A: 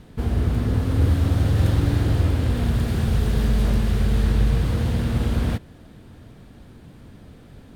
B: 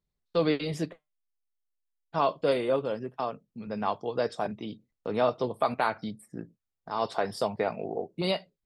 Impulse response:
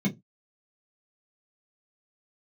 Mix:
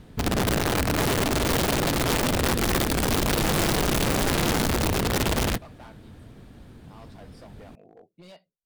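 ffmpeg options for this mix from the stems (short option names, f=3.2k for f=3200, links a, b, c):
-filter_complex "[0:a]aeval=exprs='(mod(7.08*val(0)+1,2)-1)/7.08':c=same,volume=-1.5dB[a];[1:a]lowshelf=f=180:g=3,bandreject=f=390:w=12,asoftclip=type=hard:threshold=-25.5dB,volume=-17.5dB[b];[a][b]amix=inputs=2:normalize=0"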